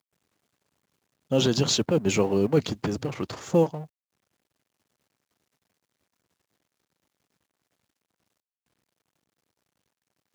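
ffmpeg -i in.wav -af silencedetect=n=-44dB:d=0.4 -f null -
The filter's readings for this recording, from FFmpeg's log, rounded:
silence_start: 0.00
silence_end: 1.31 | silence_duration: 1.31
silence_start: 3.86
silence_end: 10.35 | silence_duration: 6.49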